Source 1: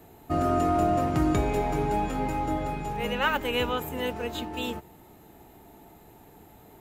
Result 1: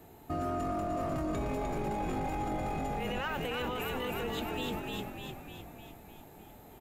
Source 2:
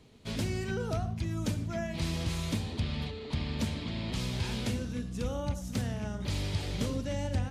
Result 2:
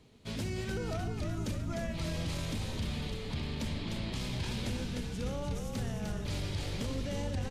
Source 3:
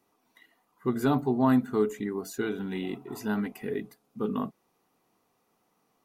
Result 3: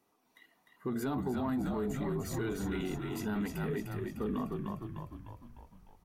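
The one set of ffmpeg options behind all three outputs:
ffmpeg -i in.wav -filter_complex "[0:a]asoftclip=type=tanh:threshold=-14dB,asplit=9[link_01][link_02][link_03][link_04][link_05][link_06][link_07][link_08][link_09];[link_02]adelay=302,afreqshift=-47,volume=-5dB[link_10];[link_03]adelay=604,afreqshift=-94,volume=-9.9dB[link_11];[link_04]adelay=906,afreqshift=-141,volume=-14.8dB[link_12];[link_05]adelay=1208,afreqshift=-188,volume=-19.6dB[link_13];[link_06]adelay=1510,afreqshift=-235,volume=-24.5dB[link_14];[link_07]adelay=1812,afreqshift=-282,volume=-29.4dB[link_15];[link_08]adelay=2114,afreqshift=-329,volume=-34.3dB[link_16];[link_09]adelay=2416,afreqshift=-376,volume=-39.2dB[link_17];[link_01][link_10][link_11][link_12][link_13][link_14][link_15][link_16][link_17]amix=inputs=9:normalize=0,alimiter=level_in=0.5dB:limit=-24dB:level=0:latency=1:release=12,volume=-0.5dB,volume=-2.5dB" out.wav

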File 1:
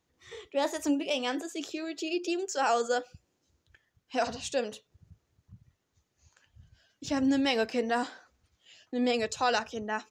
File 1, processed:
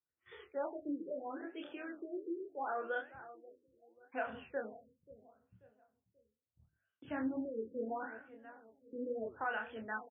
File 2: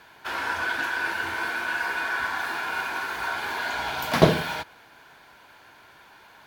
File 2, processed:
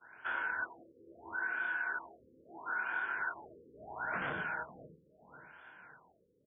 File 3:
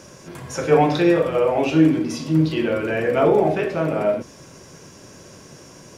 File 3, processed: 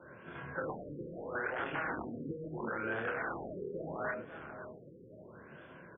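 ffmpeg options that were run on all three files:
ffmpeg -i in.wav -filter_complex "[0:a]aeval=exprs='(mod(5.31*val(0)+1,2)-1)/5.31':channel_layout=same,agate=range=-15dB:threshold=-54dB:ratio=16:detection=peak,highpass=frequency=93:poles=1,equalizer=frequency=1500:width_type=o:width=0.35:gain=10.5,bandreject=frequency=50:width_type=h:width=6,bandreject=frequency=100:width_type=h:width=6,bandreject=frequency=150:width_type=h:width=6,bandreject=frequency=200:width_type=h:width=6,bandreject=frequency=250:width_type=h:width=6,bandreject=frequency=300:width_type=h:width=6,asplit=2[link_01][link_02];[link_02]adelay=27,volume=-4dB[link_03];[link_01][link_03]amix=inputs=2:normalize=0,asplit=2[link_04][link_05];[link_05]adelay=535,lowpass=frequency=1400:poles=1,volume=-18dB,asplit=2[link_06][link_07];[link_07]adelay=535,lowpass=frequency=1400:poles=1,volume=0.42,asplit=2[link_08][link_09];[link_09]adelay=535,lowpass=frequency=1400:poles=1,volume=0.42[link_10];[link_04][link_06][link_08][link_10]amix=inputs=4:normalize=0,acompressor=threshold=-23dB:ratio=6,flanger=delay=5.6:depth=9.1:regen=78:speed=1.2:shape=sinusoidal,acrossover=split=2500[link_11][link_12];[link_12]acompressor=threshold=-45dB:ratio=4:attack=1:release=60[link_13];[link_11][link_13]amix=inputs=2:normalize=0,afftfilt=real='re*lt(b*sr/1024,530*pow(3600/530,0.5+0.5*sin(2*PI*0.75*pts/sr)))':imag='im*lt(b*sr/1024,530*pow(3600/530,0.5+0.5*sin(2*PI*0.75*pts/sr)))':win_size=1024:overlap=0.75,volume=-5.5dB" out.wav

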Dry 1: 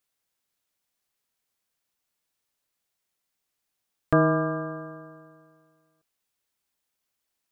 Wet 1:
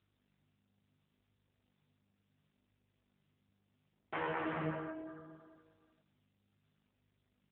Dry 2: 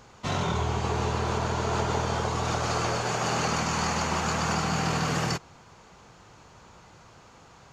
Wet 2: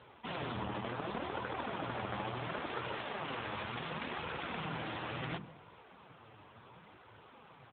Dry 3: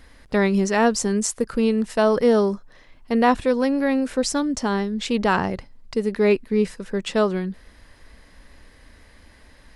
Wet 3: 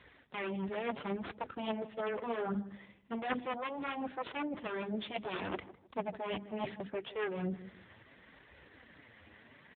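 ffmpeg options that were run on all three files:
ffmpeg -i in.wav -filter_complex "[0:a]highshelf=frequency=2800:gain=5,bandreject=frequency=50:width_type=h:width=6,bandreject=frequency=100:width_type=h:width=6,bandreject=frequency=150:width_type=h:width=6,bandreject=frequency=200:width_type=h:width=6,bandreject=frequency=250:width_type=h:width=6,bandreject=frequency=300:width_type=h:width=6,bandreject=frequency=350:width_type=h:width=6,areverse,acompressor=threshold=-29dB:ratio=8,areverse,aeval=exprs='val(0)+0.000501*(sin(2*PI*50*n/s)+sin(2*PI*2*50*n/s)/2+sin(2*PI*3*50*n/s)/3+sin(2*PI*4*50*n/s)/4+sin(2*PI*5*50*n/s)/5)':channel_layout=same,aeval=exprs='0.15*(cos(1*acos(clip(val(0)/0.15,-1,1)))-cos(1*PI/2))+0.0668*(cos(3*acos(clip(val(0)/0.15,-1,1)))-cos(3*PI/2))+0.0168*(cos(4*acos(clip(val(0)/0.15,-1,1)))-cos(4*PI/2))+0.000841*(cos(5*acos(clip(val(0)/0.15,-1,1)))-cos(5*PI/2))':channel_layout=same,asoftclip=type=tanh:threshold=-21dB,flanger=delay=2:depth=7.7:regen=3:speed=0.7:shape=sinusoidal,asplit=2[link_01][link_02];[link_02]adelay=156,lowpass=frequency=1200:poles=1,volume=-15dB,asplit=2[link_03][link_04];[link_04]adelay=156,lowpass=frequency=1200:poles=1,volume=0.3,asplit=2[link_05][link_06];[link_06]adelay=156,lowpass=frequency=1200:poles=1,volume=0.3[link_07];[link_01][link_03][link_05][link_07]amix=inputs=4:normalize=0,volume=10dB" -ar 8000 -c:a libopencore_amrnb -b:a 7950 out.amr

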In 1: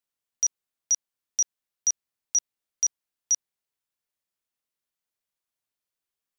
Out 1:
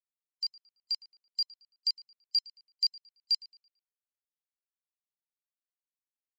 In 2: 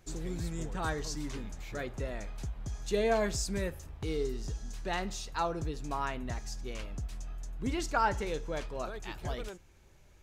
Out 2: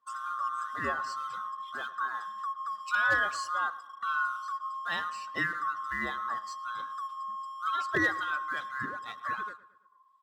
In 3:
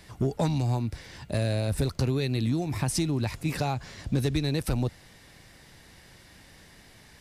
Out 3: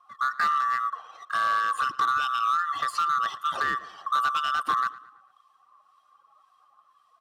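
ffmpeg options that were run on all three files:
ffmpeg -i in.wav -filter_complex "[0:a]afftfilt=real='real(if(lt(b,960),b+48*(1-2*mod(floor(b/48),2)),b),0)':imag='imag(if(lt(b,960),b+48*(1-2*mod(floor(b/48),2)),b),0)':win_size=2048:overlap=0.75,highpass=100,highshelf=frequency=11000:gain=-6,afftdn=noise_reduction=20:noise_floor=-46,acrossover=split=4200[link_01][link_02];[link_02]acompressor=threshold=-45dB:ratio=4:attack=1:release=60[link_03];[link_01][link_03]amix=inputs=2:normalize=0,equalizer=frequency=6300:width_type=o:width=0.21:gain=-5.5,asplit=2[link_04][link_05];[link_05]aeval=exprs='sgn(val(0))*max(abs(val(0))-0.00355,0)':channel_layout=same,volume=-4dB[link_06];[link_04][link_06]amix=inputs=2:normalize=0,acrossover=split=1700[link_07][link_08];[link_07]aeval=exprs='val(0)*(1-0.5/2+0.5/2*cos(2*PI*1.9*n/s))':channel_layout=same[link_09];[link_08]aeval=exprs='val(0)*(1-0.5/2-0.5/2*cos(2*PI*1.9*n/s))':channel_layout=same[link_10];[link_09][link_10]amix=inputs=2:normalize=0,asoftclip=type=hard:threshold=-19dB,asplit=2[link_11][link_12];[link_12]adelay=111,lowpass=frequency=3500:poles=1,volume=-18dB,asplit=2[link_13][link_14];[link_14]adelay=111,lowpass=frequency=3500:poles=1,volume=0.5,asplit=2[link_15][link_16];[link_16]adelay=111,lowpass=frequency=3500:poles=1,volume=0.5,asplit=2[link_17][link_18];[link_18]adelay=111,lowpass=frequency=3500:poles=1,volume=0.5[link_19];[link_13][link_15][link_17][link_19]amix=inputs=4:normalize=0[link_20];[link_11][link_20]amix=inputs=2:normalize=0" out.wav

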